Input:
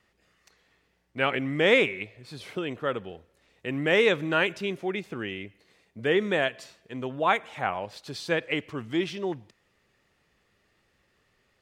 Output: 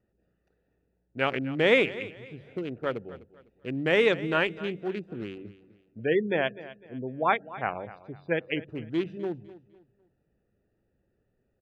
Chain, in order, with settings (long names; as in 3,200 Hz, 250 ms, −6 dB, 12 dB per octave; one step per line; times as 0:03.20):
adaptive Wiener filter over 41 samples
hum removal 47.74 Hz, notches 4
0:06.04–0:08.68: gate on every frequency bin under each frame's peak −25 dB strong
parametric band 8,000 Hz −5.5 dB 1.7 octaves
repeating echo 252 ms, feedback 32%, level −17 dB